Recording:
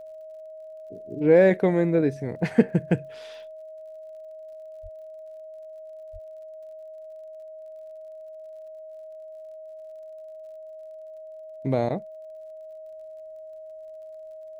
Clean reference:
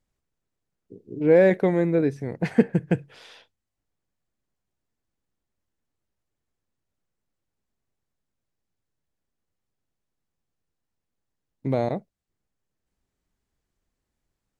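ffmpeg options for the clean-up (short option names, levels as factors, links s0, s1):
-filter_complex "[0:a]adeclick=t=4,bandreject=f=630:w=30,asplit=3[s0][s1][s2];[s0]afade=t=out:st=4.82:d=0.02[s3];[s1]highpass=f=140:w=0.5412,highpass=f=140:w=1.3066,afade=t=in:st=4.82:d=0.02,afade=t=out:st=4.94:d=0.02[s4];[s2]afade=t=in:st=4.94:d=0.02[s5];[s3][s4][s5]amix=inputs=3:normalize=0,asplit=3[s6][s7][s8];[s6]afade=t=out:st=6.12:d=0.02[s9];[s7]highpass=f=140:w=0.5412,highpass=f=140:w=1.3066,afade=t=in:st=6.12:d=0.02,afade=t=out:st=6.24:d=0.02[s10];[s8]afade=t=in:st=6.24:d=0.02[s11];[s9][s10][s11]amix=inputs=3:normalize=0"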